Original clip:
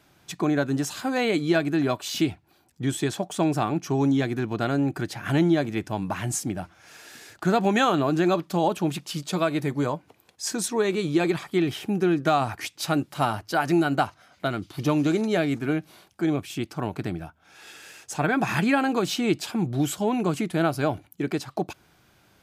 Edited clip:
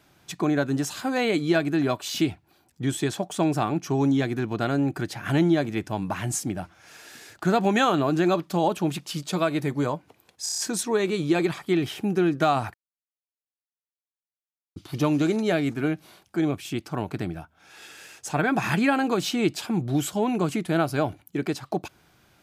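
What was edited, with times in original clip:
10.43 stutter 0.03 s, 6 plays
12.59–14.61 mute

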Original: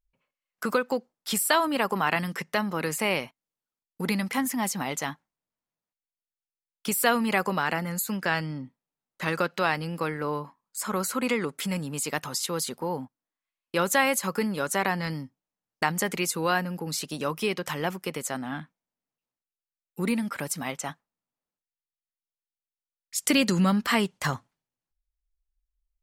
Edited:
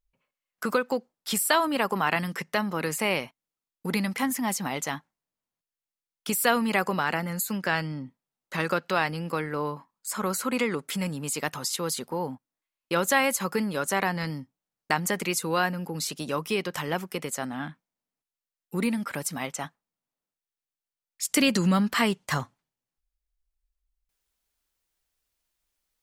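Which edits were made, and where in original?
shrink pauses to 70%

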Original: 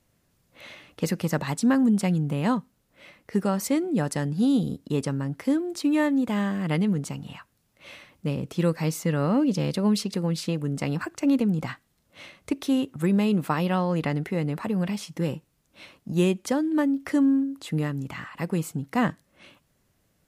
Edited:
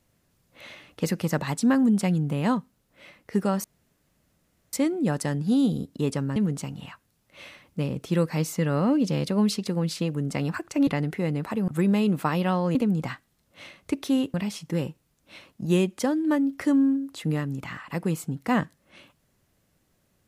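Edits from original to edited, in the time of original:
3.64 insert room tone 1.09 s
5.27–6.83 cut
11.34–12.93 swap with 14–14.81

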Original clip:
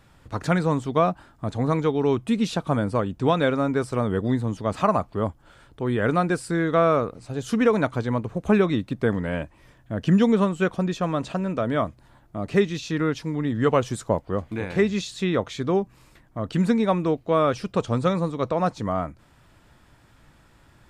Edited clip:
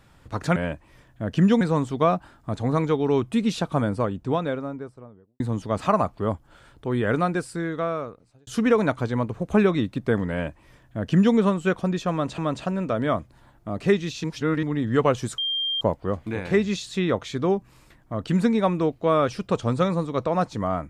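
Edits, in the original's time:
2.65–4.35 studio fade out
5.97–7.42 fade out
9.26–10.31 copy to 0.56
11.06–11.33 loop, 2 plays
12.92–13.31 reverse
14.06 add tone 3190 Hz -23 dBFS 0.43 s

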